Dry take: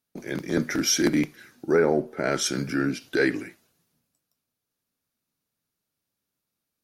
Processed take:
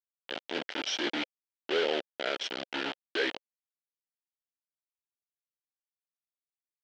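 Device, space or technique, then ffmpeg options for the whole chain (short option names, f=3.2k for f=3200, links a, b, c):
hand-held game console: -af "acrusher=bits=3:mix=0:aa=0.000001,highpass=450,equalizer=f=530:t=q:w=4:g=3,equalizer=f=1.1k:t=q:w=4:g=-7,equalizer=f=3.1k:t=q:w=4:g=8,lowpass=f=4.4k:w=0.5412,lowpass=f=4.4k:w=1.3066,volume=-6.5dB"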